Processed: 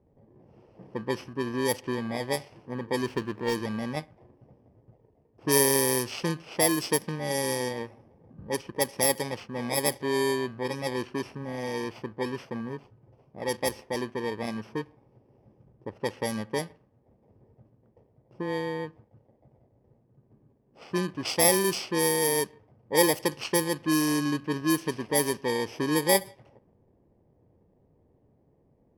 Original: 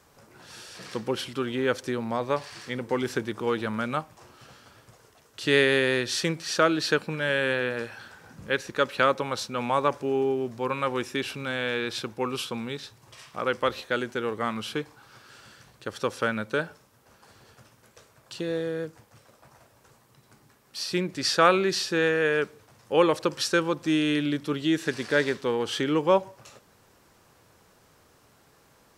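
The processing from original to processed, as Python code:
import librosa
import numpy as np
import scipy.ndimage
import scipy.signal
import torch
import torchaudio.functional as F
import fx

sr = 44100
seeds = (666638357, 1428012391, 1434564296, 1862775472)

y = fx.bit_reversed(x, sr, seeds[0], block=32)
y = fx.env_lowpass(y, sr, base_hz=570.0, full_db=-19.0)
y = fx.running_max(y, sr, window=3, at=(3.06, 3.55))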